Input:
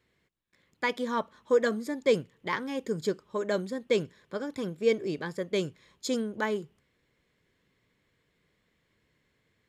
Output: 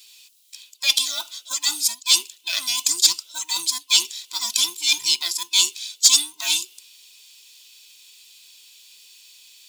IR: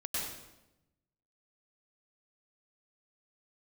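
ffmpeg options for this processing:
-af "afftfilt=real='real(if(between(b,1,1008),(2*floor((b-1)/24)+1)*24-b,b),0)':imag='imag(if(between(b,1,1008),(2*floor((b-1)/24)+1)*24-b,b),0)*if(between(b,1,1008),-1,1)':win_size=2048:overlap=0.75,highpass=790,acrusher=bits=8:mode=log:mix=0:aa=0.000001,areverse,acompressor=threshold=-40dB:ratio=12,areverse,aexciter=amount=13:drive=9.3:freq=2800,acontrast=64,volume=-1.5dB"

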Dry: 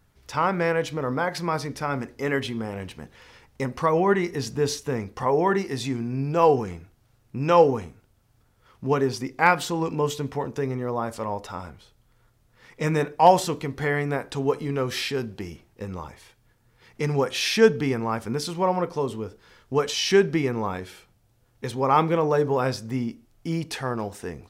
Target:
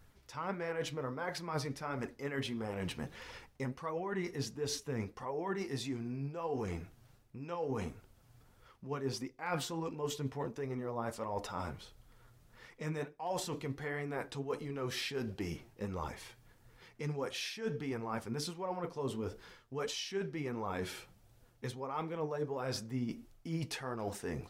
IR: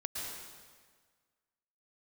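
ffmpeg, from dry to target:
-af "areverse,acompressor=threshold=-35dB:ratio=16,areverse,flanger=delay=1.3:depth=7.5:regen=51:speed=1.5:shape=triangular,volume=4.5dB"

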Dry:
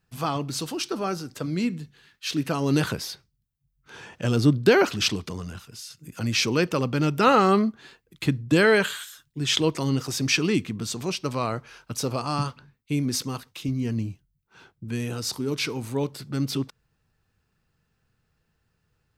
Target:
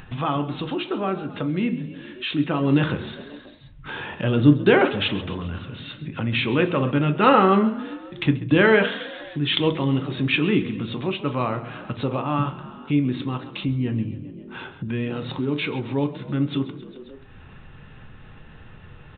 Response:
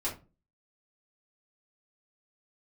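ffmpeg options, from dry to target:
-filter_complex "[0:a]aresample=8000,aresample=44100,asplit=5[link_01][link_02][link_03][link_04][link_05];[link_02]adelay=133,afreqshift=34,volume=-16dB[link_06];[link_03]adelay=266,afreqshift=68,volume=-22.6dB[link_07];[link_04]adelay=399,afreqshift=102,volume=-29.1dB[link_08];[link_05]adelay=532,afreqshift=136,volume=-35.7dB[link_09];[link_01][link_06][link_07][link_08][link_09]amix=inputs=5:normalize=0,asplit=2[link_10][link_11];[1:a]atrim=start_sample=2205[link_12];[link_11][link_12]afir=irnorm=-1:irlink=0,volume=-8.5dB[link_13];[link_10][link_13]amix=inputs=2:normalize=0,acompressor=mode=upward:threshold=-23dB:ratio=2.5"

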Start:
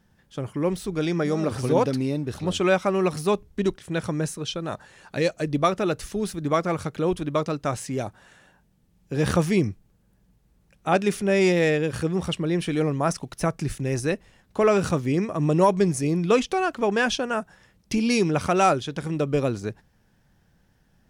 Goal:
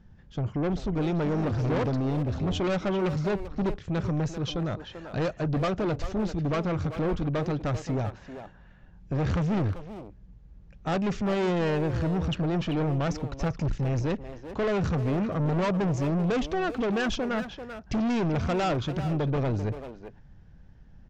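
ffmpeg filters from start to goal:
ffmpeg -i in.wav -filter_complex "[0:a]aemphasis=mode=reproduction:type=bsi,aresample=16000,asoftclip=type=tanh:threshold=-24dB,aresample=44100,asplit=2[link_01][link_02];[link_02]adelay=390,highpass=300,lowpass=3400,asoftclip=type=hard:threshold=-28dB,volume=-7dB[link_03];[link_01][link_03]amix=inputs=2:normalize=0" out.wav

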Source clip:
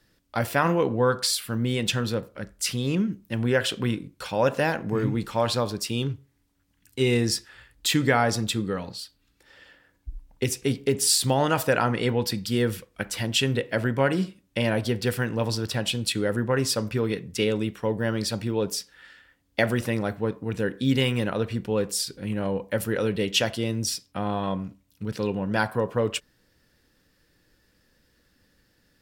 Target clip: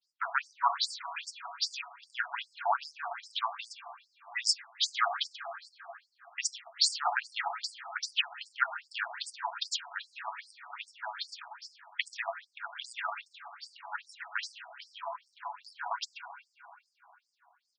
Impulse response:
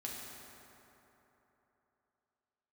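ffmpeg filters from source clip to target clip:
-filter_complex "[0:a]agate=range=-33dB:threshold=-58dB:ratio=3:detection=peak,equalizer=frequency=5500:width_type=o:width=0.46:gain=2,aecho=1:1:6.8:0.43,atempo=1.7,aecho=1:1:131:0.168,asplit=2[link_01][link_02];[1:a]atrim=start_sample=2205,lowpass=2200[link_03];[link_02][link_03]afir=irnorm=-1:irlink=0,volume=-3dB[link_04];[link_01][link_04]amix=inputs=2:normalize=0,asetrate=42336,aresample=44100,afftfilt=real='re*between(b*sr/1024,870*pow(6700/870,0.5+0.5*sin(2*PI*2.5*pts/sr))/1.41,870*pow(6700/870,0.5+0.5*sin(2*PI*2.5*pts/sr))*1.41)':imag='im*between(b*sr/1024,870*pow(6700/870,0.5+0.5*sin(2*PI*2.5*pts/sr))/1.41,870*pow(6700/870,0.5+0.5*sin(2*PI*2.5*pts/sr))*1.41)':win_size=1024:overlap=0.75"

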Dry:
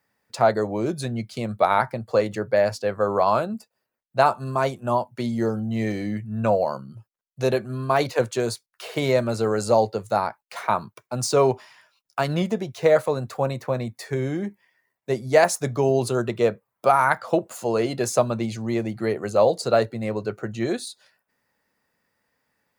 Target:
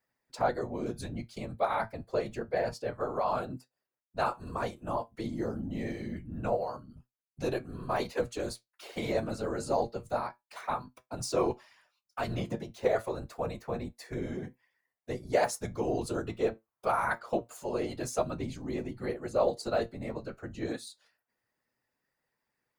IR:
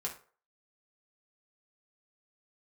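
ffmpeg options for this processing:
-af "afftfilt=real='hypot(re,im)*cos(2*PI*random(0))':imag='hypot(re,im)*sin(2*PI*random(1))':win_size=512:overlap=0.75,flanger=delay=7.8:depth=1.2:regen=70:speed=0.27:shape=triangular"

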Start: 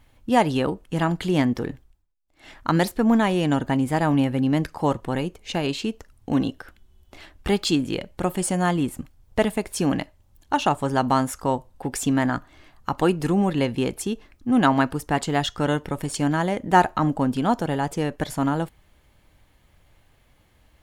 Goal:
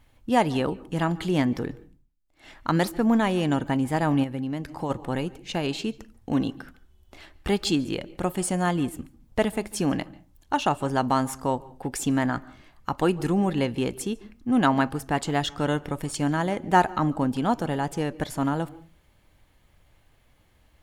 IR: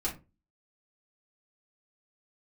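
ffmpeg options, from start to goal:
-filter_complex "[0:a]asplit=2[link_01][link_02];[1:a]atrim=start_sample=2205,highshelf=frequency=9500:gain=-8.5,adelay=139[link_03];[link_02][link_03]afir=irnorm=-1:irlink=0,volume=-25.5dB[link_04];[link_01][link_04]amix=inputs=2:normalize=0,asplit=3[link_05][link_06][link_07];[link_05]afade=type=out:start_time=4.23:duration=0.02[link_08];[link_06]acompressor=threshold=-24dB:ratio=6,afade=type=in:start_time=4.23:duration=0.02,afade=type=out:start_time=4.89:duration=0.02[link_09];[link_07]afade=type=in:start_time=4.89:duration=0.02[link_10];[link_08][link_09][link_10]amix=inputs=3:normalize=0,volume=-2.5dB"

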